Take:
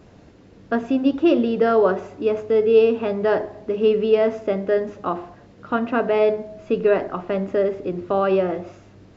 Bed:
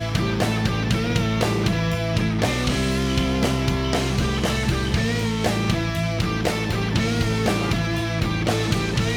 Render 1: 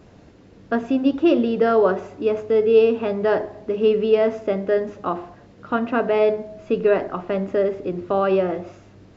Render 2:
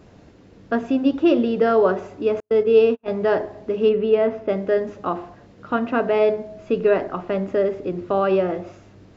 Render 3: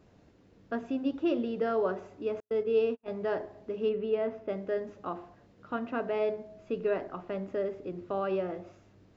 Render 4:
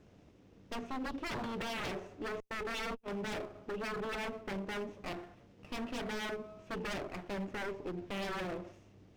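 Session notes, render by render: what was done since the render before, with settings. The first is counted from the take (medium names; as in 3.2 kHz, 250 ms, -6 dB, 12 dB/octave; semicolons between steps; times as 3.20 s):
no audible change
2.40–3.08 s: gate -21 dBFS, range -47 dB; 3.89–4.49 s: distance through air 210 m
trim -12 dB
comb filter that takes the minimum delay 0.33 ms; wavefolder -33.5 dBFS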